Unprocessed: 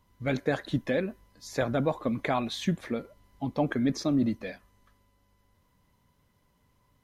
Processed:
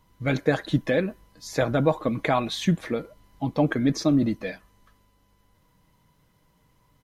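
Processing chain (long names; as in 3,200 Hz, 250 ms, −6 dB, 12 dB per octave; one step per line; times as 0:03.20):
comb filter 6.3 ms, depth 33%
level +4.5 dB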